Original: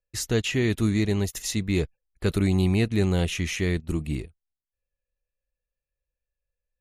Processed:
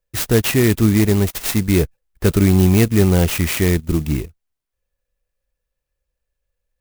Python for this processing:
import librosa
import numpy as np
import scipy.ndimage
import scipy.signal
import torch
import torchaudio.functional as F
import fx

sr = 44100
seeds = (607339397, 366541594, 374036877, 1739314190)

y = fx.clock_jitter(x, sr, seeds[0], jitter_ms=0.063)
y = y * 10.0 ** (9.0 / 20.0)